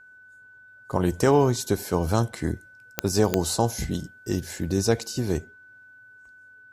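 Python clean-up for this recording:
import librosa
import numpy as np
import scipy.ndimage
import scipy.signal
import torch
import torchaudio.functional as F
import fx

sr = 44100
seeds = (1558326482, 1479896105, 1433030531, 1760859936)

y = fx.fix_declick_ar(x, sr, threshold=10.0)
y = fx.notch(y, sr, hz=1500.0, q=30.0)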